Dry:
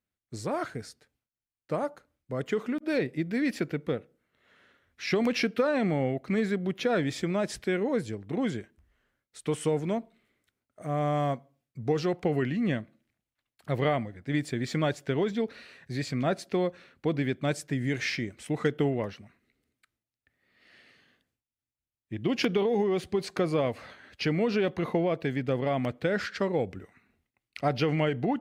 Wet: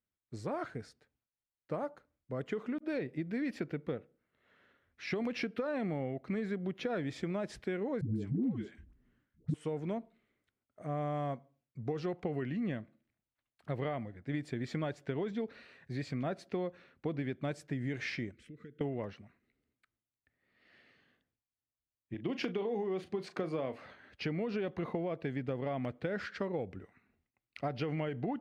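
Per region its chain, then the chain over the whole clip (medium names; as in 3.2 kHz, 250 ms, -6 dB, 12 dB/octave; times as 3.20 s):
8.01–9.54 s: resonant low shelf 380 Hz +12 dB, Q 1.5 + phase dispersion highs, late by 144 ms, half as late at 460 Hz
18.31–18.81 s: treble shelf 2.6 kHz -8.5 dB + compression 3:1, threshold -46 dBFS + Butterworth band-stop 820 Hz, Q 0.72
22.14–23.85 s: high-pass 150 Hz + doubling 37 ms -12 dB
whole clip: low-pass 2.5 kHz 6 dB/octave; compression, threshold -27 dBFS; trim -4.5 dB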